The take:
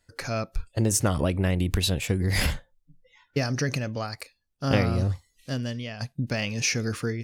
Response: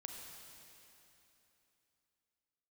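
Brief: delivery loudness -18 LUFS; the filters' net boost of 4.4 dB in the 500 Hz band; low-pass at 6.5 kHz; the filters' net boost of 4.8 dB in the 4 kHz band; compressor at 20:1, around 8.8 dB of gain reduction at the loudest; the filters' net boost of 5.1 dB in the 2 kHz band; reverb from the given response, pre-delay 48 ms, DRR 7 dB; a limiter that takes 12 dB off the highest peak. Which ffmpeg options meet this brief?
-filter_complex "[0:a]lowpass=6500,equalizer=f=500:t=o:g=5,equalizer=f=2000:t=o:g=4.5,equalizer=f=4000:t=o:g=5.5,acompressor=threshold=0.0708:ratio=20,alimiter=limit=0.0891:level=0:latency=1,asplit=2[s0][s1];[1:a]atrim=start_sample=2205,adelay=48[s2];[s1][s2]afir=irnorm=-1:irlink=0,volume=0.668[s3];[s0][s3]amix=inputs=2:normalize=0,volume=4.73"

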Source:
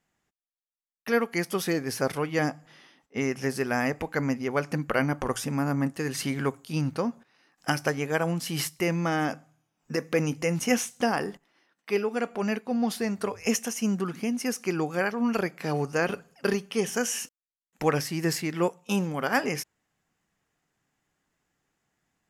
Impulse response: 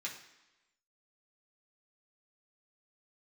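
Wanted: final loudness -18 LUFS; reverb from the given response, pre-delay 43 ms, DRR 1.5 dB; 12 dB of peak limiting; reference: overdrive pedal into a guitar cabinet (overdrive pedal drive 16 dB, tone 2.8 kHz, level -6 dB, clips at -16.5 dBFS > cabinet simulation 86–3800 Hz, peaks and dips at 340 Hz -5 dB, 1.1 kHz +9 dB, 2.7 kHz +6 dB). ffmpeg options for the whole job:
-filter_complex "[0:a]alimiter=limit=0.0891:level=0:latency=1,asplit=2[s0][s1];[1:a]atrim=start_sample=2205,adelay=43[s2];[s1][s2]afir=irnorm=-1:irlink=0,volume=0.794[s3];[s0][s3]amix=inputs=2:normalize=0,asplit=2[s4][s5];[s5]highpass=f=720:p=1,volume=6.31,asoftclip=type=tanh:threshold=0.15[s6];[s4][s6]amix=inputs=2:normalize=0,lowpass=f=2800:p=1,volume=0.501,highpass=86,equalizer=f=340:t=q:w=4:g=-5,equalizer=f=1100:t=q:w=4:g=9,equalizer=f=2700:t=q:w=4:g=6,lowpass=f=3800:w=0.5412,lowpass=f=3800:w=1.3066,volume=2.66"

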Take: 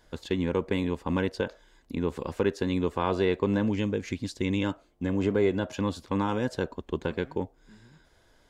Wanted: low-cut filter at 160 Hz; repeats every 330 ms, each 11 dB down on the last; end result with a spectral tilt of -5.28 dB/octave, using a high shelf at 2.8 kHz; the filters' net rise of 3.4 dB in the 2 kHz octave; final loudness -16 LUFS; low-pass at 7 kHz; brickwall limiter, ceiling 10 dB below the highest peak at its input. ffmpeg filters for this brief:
-af "highpass=160,lowpass=7000,equalizer=f=2000:t=o:g=6.5,highshelf=f=2800:g=-5,alimiter=limit=0.0841:level=0:latency=1,aecho=1:1:330|660|990:0.282|0.0789|0.0221,volume=7.5"

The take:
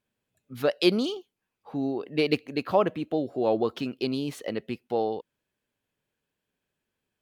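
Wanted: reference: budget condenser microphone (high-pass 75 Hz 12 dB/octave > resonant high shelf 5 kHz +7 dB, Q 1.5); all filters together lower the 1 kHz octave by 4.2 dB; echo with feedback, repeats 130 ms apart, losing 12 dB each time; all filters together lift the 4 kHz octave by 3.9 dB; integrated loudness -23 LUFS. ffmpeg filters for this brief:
-af "highpass=75,equalizer=f=1000:t=o:g=-6,equalizer=f=4000:t=o:g=6,highshelf=f=5000:t=q:w=1.5:g=7,aecho=1:1:130|260|390:0.251|0.0628|0.0157,volume=1.78"

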